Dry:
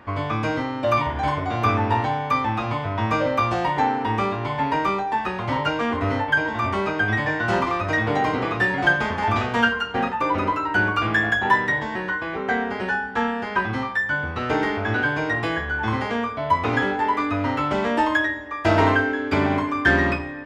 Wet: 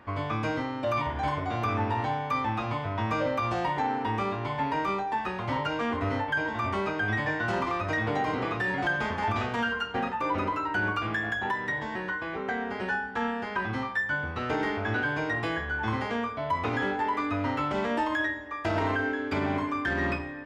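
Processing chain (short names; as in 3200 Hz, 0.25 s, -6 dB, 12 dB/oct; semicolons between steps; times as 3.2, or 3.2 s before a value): 10.92–12.81 compressor 2.5:1, threshold -22 dBFS, peak gain reduction 7 dB; limiter -13.5 dBFS, peak gain reduction 8.5 dB; gain -5.5 dB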